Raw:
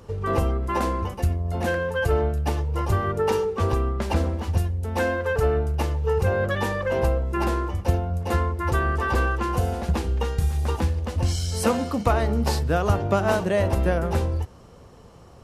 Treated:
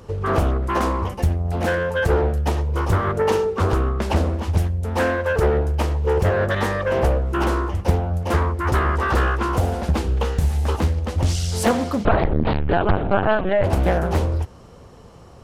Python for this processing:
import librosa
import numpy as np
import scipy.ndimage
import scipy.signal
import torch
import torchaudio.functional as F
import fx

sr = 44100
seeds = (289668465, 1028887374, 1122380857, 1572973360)

y = fx.lpc_vocoder(x, sr, seeds[0], excitation='pitch_kept', order=16, at=(12.05, 13.64))
y = fx.doppler_dist(y, sr, depth_ms=0.93)
y = y * librosa.db_to_amplitude(3.5)